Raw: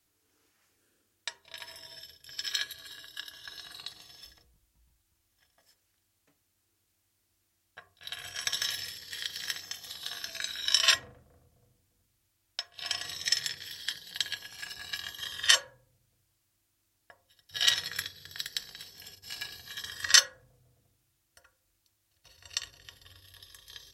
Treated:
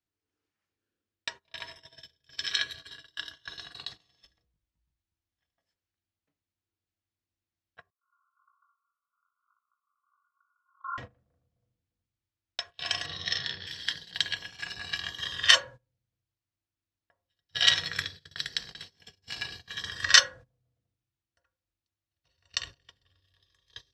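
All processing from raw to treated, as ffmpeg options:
-filter_complex "[0:a]asettb=1/sr,asplit=3[a][b][c];[a]atrim=end=7.904[d];[b]atrim=start=7.9:end=10.98,asetpts=PTS-STARTPTS,afade=t=in:d=0.004:c=qsin,afade=t=out:st=3.076:d=0.004:c=qsin,flanger=delay=17.5:depth=5.4:speed=1.1,asuperpass=centerf=1200:order=20:qfactor=2.7[e];[c]atrim=start=10.976[f];[d][e]acrossfade=d=0.004:c1=hsin:c2=qsin[g];[g][f]acrossfade=d=0.004:c1=qsin:c2=hsin,asettb=1/sr,asplit=3[h][i][j];[h]atrim=end=13.064[k];[i]atrim=start=13.06:end=13.67,asetpts=PTS-STARTPTS,afade=t=in:d=0.004:c=qsin,afade=t=out:st=0.606:d=0.004:c=qsin,lowpass=f=4.6k:w=0.5412,lowpass=f=4.6k:w=1.3066,equalizer=f=2.3k:w=3.5:g=-11,asplit=2[l][m];[m]adelay=33,volume=-5dB[n];[l][n]amix=inputs=2:normalize=0,atrim=end_sample=26901[o];[j]atrim=start=13.666[p];[k][o]acrossfade=d=0.004:c1=hsin:c2=qsin[q];[q][p]acrossfade=d=0.004:c1=qsin:c2=hsin,agate=range=-20dB:threshold=-46dB:ratio=16:detection=peak,lowpass=4.8k,equalizer=f=140:t=o:w=2.3:g=4.5,volume=4.5dB"

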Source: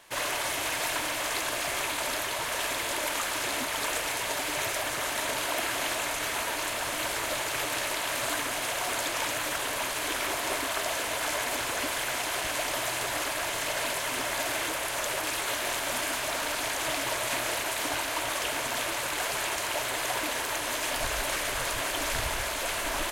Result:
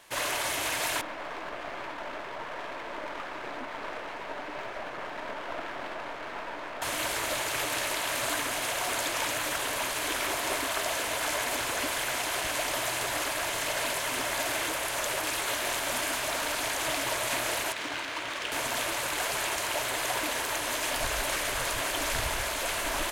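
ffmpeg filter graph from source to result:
-filter_complex "[0:a]asettb=1/sr,asplit=3[a][b][c];[a]atrim=end=1.014[d];[b]atrim=start=1.01:end=6.82,asetpts=PTS-STARTPTS,afade=t=in:d=0.004:c=qsin,afade=t=out:st=5.806:d=0.004:c=qsin,lowpass=1.5k,aeval=exprs='clip(val(0),-1,0.00794)':c=same,equalizer=f=75:t=o:w=1.6:g=-13.5[e];[c]atrim=start=6.816[f];[d][e]acrossfade=d=0.004:c1=hsin:c2=qsin[g];[g][f]acrossfade=d=0.004:c1=qsin:c2=hsin,asettb=1/sr,asplit=3[h][i][j];[h]atrim=end=17.724[k];[i]atrim=start=17.72:end=18.52,asetpts=PTS-STARTPTS,afade=t=in:d=0.004:c=qsin,afade=t=out:st=0.796:d=0.004:c=qsin,highpass=f=190:p=1,adynamicsmooth=sensitivity=4:basefreq=2.7k,equalizer=f=710:t=o:w=1.3:g=-6.5[l];[j]atrim=start=18.516[m];[k][l]acrossfade=d=0.004:c1=hsin:c2=qsin[n];[n][m]acrossfade=d=0.004:c1=qsin:c2=hsin"

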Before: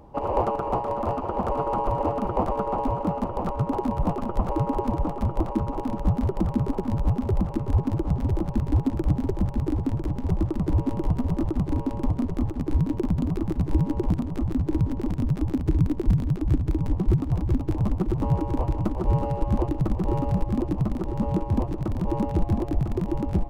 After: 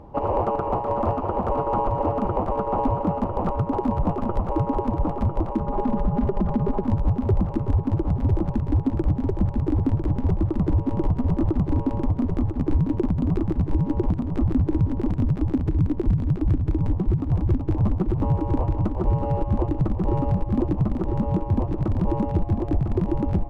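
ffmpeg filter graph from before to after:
-filter_complex "[0:a]asettb=1/sr,asplit=3[a][b][c];[a]atrim=end=5.604[d];[b]atrim=start=5.6:end=6.82,asetpts=PTS-STARTPTS,afade=t=in:d=0.004:c=qsin,afade=t=out:st=1.216:d=0.004:c=qsin,aemphasis=mode=reproduction:type=50fm,aecho=1:1:4.9:0.73,atrim=end_sample=53802,acompressor=threshold=-21dB:ratio=6:attack=3.2:release=140:knee=1:detection=peak[e];[c]atrim=start=6.816[f];[d][e]acrossfade=d=0.004:c1=hsin:c2=qsin[g];[g][f]acrossfade=d=0.004:c1=qsin:c2=hsin,lowpass=f=2.2k:p=1,equalizer=f=95:t=o:w=0.22:g=5,alimiter=limit=-17dB:level=0:latency=1:release=240,volume=4.5dB"

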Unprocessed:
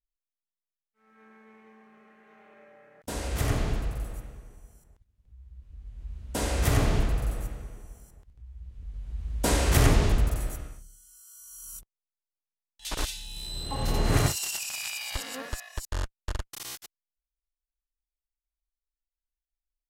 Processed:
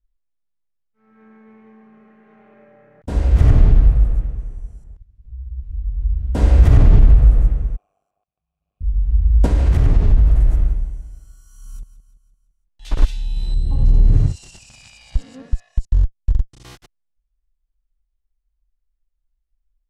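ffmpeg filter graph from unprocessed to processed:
-filter_complex "[0:a]asettb=1/sr,asplit=3[a][b][c];[a]atrim=end=4.384[d];[b]atrim=start=4.38:end=5.77,asetpts=PTS-STARTPTS,afade=t=in:d=0.004:c=qsin,afade=t=out:st=1.386:d=0.004:c=qsin,lowpass=f=11k:w=0.5412,lowpass=f=11k:w=1.3066,aemphasis=mode=production:type=cd[e];[c]atrim=start=5.766[f];[d][e]acrossfade=d=0.004:c1=hsin:c2=qsin[g];[g][f]acrossfade=d=0.004:c1=qsin:c2=hsin,asettb=1/sr,asplit=3[h][i][j];[h]atrim=end=7.764[k];[i]atrim=start=7.76:end=8.81,asetpts=PTS-STARTPTS,afade=t=in:d=0.004:c=qsin,afade=t=out:st=1.046:d=0.004:c=qsin,aemphasis=mode=production:type=riaa,tremolo=f=99:d=0.889,asplit=3[l][m][n];[l]bandpass=f=730:t=q:w=8,volume=0dB[o];[m]bandpass=f=1.09k:t=q:w=8,volume=-6dB[p];[n]bandpass=f=2.44k:t=q:w=8,volume=-9dB[q];[o][p][q]amix=inputs=3:normalize=0[r];[j]atrim=start=8.806[s];[k][r]acrossfade=d=0.004:c1=hsin:c2=qsin[t];[t][s]acrossfade=d=0.004:c1=qsin:c2=hsin,asettb=1/sr,asplit=3[u][v][w];[u]atrim=end=9.464[x];[v]atrim=start=9.46:end=13.02,asetpts=PTS-STARTPTS,afade=t=in:d=0.004:c=qsin,afade=t=out:st=3.556:d=0.004:c=qsin,aecho=1:1:170|340|510|680|850:0.2|0.102|0.0519|0.0265|0.0135,atrim=end_sample=156996,acompressor=threshold=-28dB:ratio=4:attack=3.2:release=140:knee=1:detection=peak[y];[w]atrim=start=13.016[z];[x][y]acrossfade=d=0.004:c1=hsin:c2=qsin[aa];[aa][z]acrossfade=d=0.004:c1=qsin:c2=hsin,asettb=1/sr,asplit=3[ab][ac][ad];[ab]atrim=end=13.544[ae];[ac]atrim=start=13.54:end=16.64,asetpts=PTS-STARTPTS,afade=t=in:d=0.004:c=qsin,afade=t=out:st=3.096:d=0.004:c=qsin,lowpass=f=9.1k:w=0.5412,lowpass=f=9.1k:w=1.3066,equalizer=f=1.3k:w=0.35:g=-13.5,acompressor=threshold=-30dB:ratio=2:attack=3.2:release=140:knee=1:detection=peak[af];[ad]atrim=start=16.636[ag];[ae][af]acrossfade=d=0.004:c1=hsin:c2=qsin[ah];[ah][ag]acrossfade=d=0.004:c1=qsin:c2=hsin,aemphasis=mode=reproduction:type=riaa,alimiter=level_in=4dB:limit=-1dB:release=50:level=0:latency=1,volume=-1dB"

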